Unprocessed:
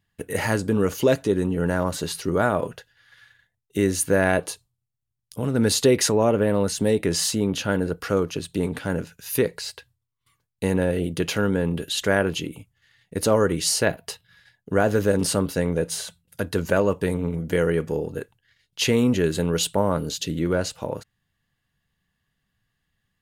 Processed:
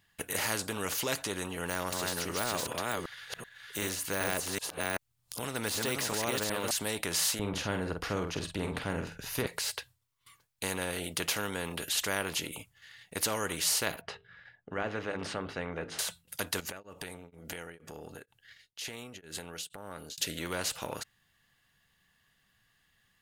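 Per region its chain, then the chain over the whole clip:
1.53–6.71 reverse delay 0.382 s, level -2.5 dB + de-esser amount 75%
7.39–9.47 tilt -4.5 dB/oct + doubler 48 ms -8.5 dB
14.01–15.99 LPF 1600 Hz + bell 980 Hz -8 dB 0.23 oct + notches 50/100/150/200/250/300/350/400/450 Hz
16.6–20.18 notch 1000 Hz, Q 5.6 + compressor, threshold -35 dBFS + beating tremolo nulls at 2.1 Hz
whole clip: low shelf 440 Hz -10.5 dB; spectral compressor 2:1; gain -4.5 dB

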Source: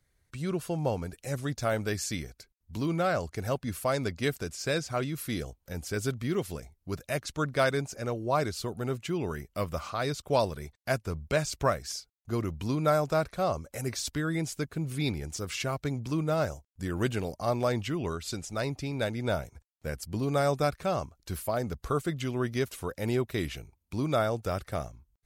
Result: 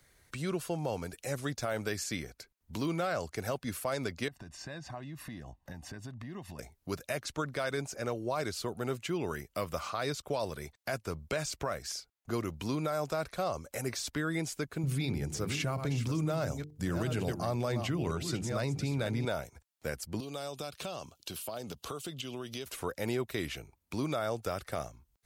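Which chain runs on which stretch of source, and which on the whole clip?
4.28–6.59 LPF 1400 Hz 6 dB/oct + comb 1.1 ms, depth 76% + compressor 16:1, threshold -39 dBFS
14.83–19.25 reverse delay 0.469 s, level -10 dB + bell 120 Hz +11.5 dB 1.9 oct + notches 50/100/150/200/250/300/350/400/450 Hz
20.2–22.66 HPF 110 Hz + resonant high shelf 2400 Hz +6.5 dB, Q 3 + compressor 8:1, threshold -37 dBFS
whole clip: low shelf 210 Hz -8.5 dB; limiter -23.5 dBFS; three-band squash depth 40%

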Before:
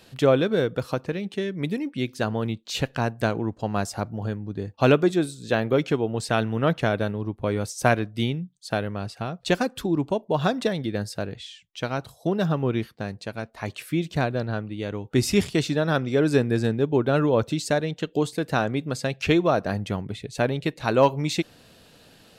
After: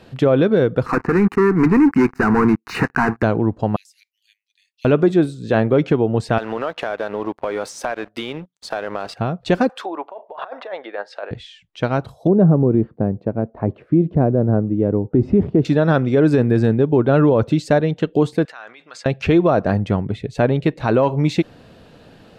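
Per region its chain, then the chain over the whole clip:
0.86–3.23 BPF 320–2600 Hz + sample leveller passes 5 + fixed phaser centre 1400 Hz, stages 4
3.76–4.85 steep high-pass 2000 Hz 72 dB/oct + differentiator + compressor 3:1, threshold -46 dBFS
6.38–9.14 HPF 600 Hz + compressor, threshold -38 dBFS + sample leveller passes 3
9.69–11.31 treble ducked by the level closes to 2000 Hz, closed at -24 dBFS + HPF 610 Hz 24 dB/oct + negative-ratio compressor -37 dBFS
12.27–15.65 band-pass 420 Hz, Q 0.73 + tilt -3.5 dB/oct
18.45–19.06 negative-ratio compressor -31 dBFS + Butterworth band-pass 3200 Hz, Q 0.51 + dynamic EQ 4000 Hz, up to -5 dB, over -46 dBFS, Q 1.1
whole clip: LPF 1200 Hz 6 dB/oct; maximiser +14.5 dB; gain -5 dB

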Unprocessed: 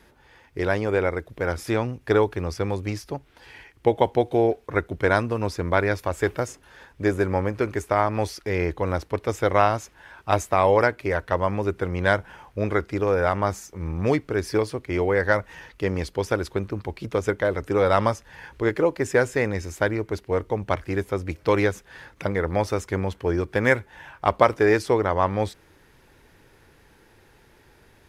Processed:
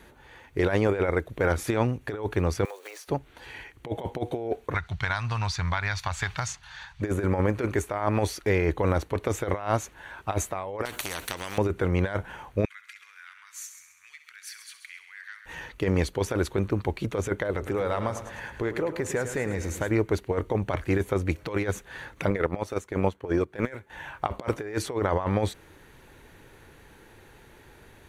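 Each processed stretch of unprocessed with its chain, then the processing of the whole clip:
2.65–3.08 block floating point 5-bit + elliptic high-pass 450 Hz, stop band 80 dB + compressor 5:1, threshold -41 dBFS
4.74–7.02 EQ curve 150 Hz 0 dB, 280 Hz -22 dB, 500 Hz -20 dB, 790 Hz -1 dB, 2900 Hz +4 dB, 4700 Hz +11 dB, 12000 Hz -11 dB + compressor, threshold -26 dBFS
10.85–11.58 high shelf 11000 Hz +7 dB + compressor 12:1, threshold -25 dBFS + spectral compressor 4:1
12.65–15.46 compressor 5:1, threshold -35 dBFS + inverse Chebyshev high-pass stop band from 660 Hz, stop band 50 dB + multi-head echo 66 ms, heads first and second, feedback 47%, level -12 dB
17.5–19.91 compressor 4:1, threshold -29 dBFS + feedback echo 0.105 s, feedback 55%, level -10.5 dB
22.3–23.9 HPF 130 Hz 6 dB/oct + transient shaper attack +7 dB, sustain -10 dB + mismatched tape noise reduction decoder only
whole clip: notch 5100 Hz, Q 5.5; negative-ratio compressor -24 dBFS, ratio -0.5

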